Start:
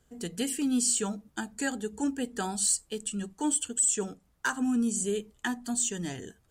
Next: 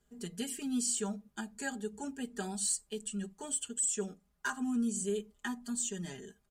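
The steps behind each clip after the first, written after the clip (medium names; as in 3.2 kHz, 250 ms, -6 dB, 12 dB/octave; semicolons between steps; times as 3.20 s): comb 4.9 ms, depth 89%; trim -9 dB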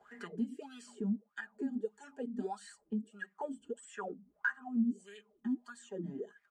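wah-wah 1.6 Hz 210–1900 Hz, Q 8.8; three bands compressed up and down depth 70%; trim +10.5 dB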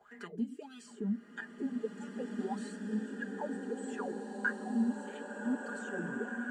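swelling reverb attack 2110 ms, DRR 0.5 dB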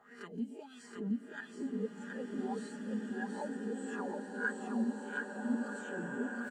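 reverse spectral sustain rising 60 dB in 0.30 s; on a send: delay 723 ms -3.5 dB; on the sum: trim -3.5 dB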